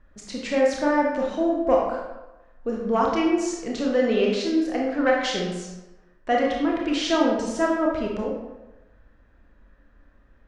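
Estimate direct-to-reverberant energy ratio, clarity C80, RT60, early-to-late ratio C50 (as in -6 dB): -2.5 dB, 4.5 dB, 1.0 s, 1.0 dB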